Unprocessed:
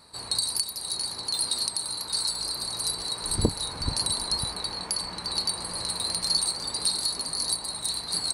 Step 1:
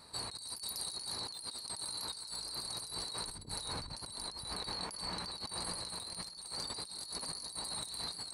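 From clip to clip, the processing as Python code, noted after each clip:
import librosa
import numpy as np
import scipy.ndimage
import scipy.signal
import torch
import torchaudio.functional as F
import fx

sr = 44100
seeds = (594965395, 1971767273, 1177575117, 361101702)

y = fx.over_compress(x, sr, threshold_db=-36.0, ratio=-1.0)
y = y * librosa.db_to_amplitude(-7.5)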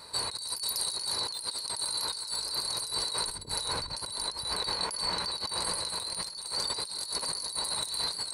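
y = fx.low_shelf(x, sr, hz=260.0, db=-7.5)
y = y + 0.32 * np.pad(y, (int(2.0 * sr / 1000.0), 0))[:len(y)]
y = y * librosa.db_to_amplitude(8.5)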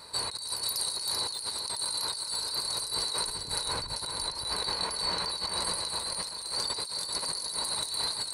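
y = x + 10.0 ** (-7.5 / 20.0) * np.pad(x, (int(388 * sr / 1000.0), 0))[:len(x)]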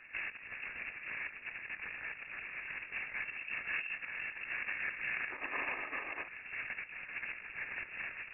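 y = scipy.signal.medfilt(x, 25)
y = fx.freq_invert(y, sr, carrier_hz=2700)
y = fx.spec_box(y, sr, start_s=5.31, length_s=0.97, low_hz=240.0, high_hz=1300.0, gain_db=11)
y = y * librosa.db_to_amplitude(1.5)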